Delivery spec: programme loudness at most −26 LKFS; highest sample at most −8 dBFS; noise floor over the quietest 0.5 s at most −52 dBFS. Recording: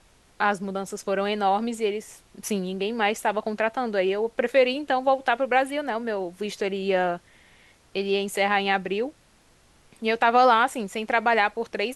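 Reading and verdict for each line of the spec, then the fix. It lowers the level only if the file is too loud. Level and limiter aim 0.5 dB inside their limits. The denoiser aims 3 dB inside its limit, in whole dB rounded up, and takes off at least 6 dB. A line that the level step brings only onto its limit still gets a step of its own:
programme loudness −24.5 LKFS: out of spec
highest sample −6.5 dBFS: out of spec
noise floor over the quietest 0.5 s −59 dBFS: in spec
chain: level −2 dB

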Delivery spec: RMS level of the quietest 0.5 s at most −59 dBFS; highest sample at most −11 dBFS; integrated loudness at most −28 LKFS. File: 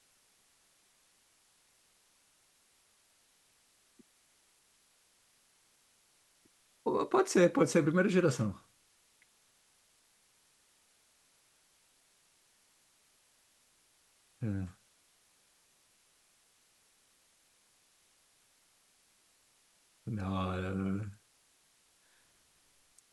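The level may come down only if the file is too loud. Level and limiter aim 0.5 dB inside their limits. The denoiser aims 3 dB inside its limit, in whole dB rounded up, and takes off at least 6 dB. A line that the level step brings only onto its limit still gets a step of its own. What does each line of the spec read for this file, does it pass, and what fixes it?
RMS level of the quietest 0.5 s −70 dBFS: in spec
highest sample −14.5 dBFS: in spec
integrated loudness −32.0 LKFS: in spec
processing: no processing needed

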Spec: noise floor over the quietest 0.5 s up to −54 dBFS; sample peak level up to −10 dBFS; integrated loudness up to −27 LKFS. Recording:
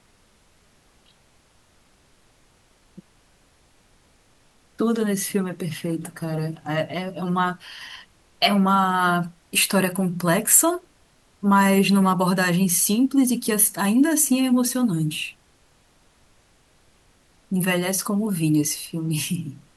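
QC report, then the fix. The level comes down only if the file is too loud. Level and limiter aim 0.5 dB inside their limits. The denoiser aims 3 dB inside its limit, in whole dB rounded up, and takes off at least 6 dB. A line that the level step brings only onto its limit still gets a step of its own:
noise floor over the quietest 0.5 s −59 dBFS: in spec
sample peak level −2.0 dBFS: out of spec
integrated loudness −21.0 LKFS: out of spec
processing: level −6.5 dB
brickwall limiter −10.5 dBFS

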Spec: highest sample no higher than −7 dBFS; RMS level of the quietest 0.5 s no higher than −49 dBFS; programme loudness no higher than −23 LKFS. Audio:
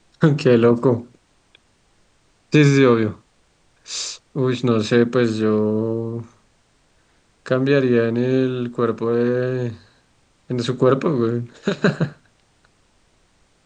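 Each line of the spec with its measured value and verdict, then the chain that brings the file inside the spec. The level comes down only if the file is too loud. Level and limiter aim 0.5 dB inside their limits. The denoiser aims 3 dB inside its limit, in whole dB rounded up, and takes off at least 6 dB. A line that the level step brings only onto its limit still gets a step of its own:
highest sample −3.0 dBFS: out of spec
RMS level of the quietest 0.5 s −60 dBFS: in spec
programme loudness −19.0 LKFS: out of spec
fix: level −4.5 dB

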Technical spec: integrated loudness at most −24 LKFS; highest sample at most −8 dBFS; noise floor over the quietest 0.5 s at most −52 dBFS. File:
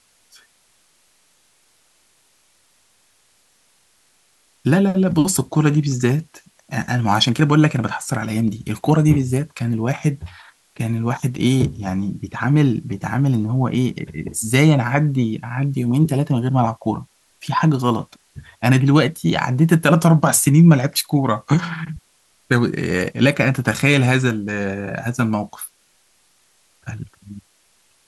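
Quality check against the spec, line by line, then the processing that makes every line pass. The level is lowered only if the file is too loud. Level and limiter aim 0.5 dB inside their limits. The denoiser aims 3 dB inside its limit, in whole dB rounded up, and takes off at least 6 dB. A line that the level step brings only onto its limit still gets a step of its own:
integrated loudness −18.5 LKFS: out of spec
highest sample −2.0 dBFS: out of spec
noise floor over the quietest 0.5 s −59 dBFS: in spec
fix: level −6 dB
brickwall limiter −8.5 dBFS

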